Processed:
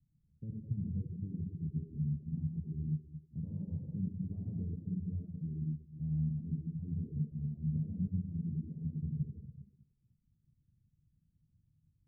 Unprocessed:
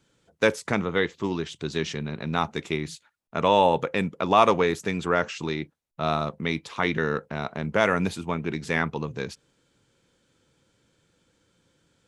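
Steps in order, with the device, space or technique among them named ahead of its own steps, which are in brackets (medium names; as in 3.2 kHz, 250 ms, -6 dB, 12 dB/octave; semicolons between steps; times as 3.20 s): 7.96–8.74 s: high-pass 64 Hz 12 dB/octave; club heard from the street (peak limiter -10.5 dBFS, peak gain reduction 6.5 dB; low-pass 150 Hz 24 dB/octave; reverberation RT60 1.4 s, pre-delay 67 ms, DRR -2 dB); reverb removal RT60 0.68 s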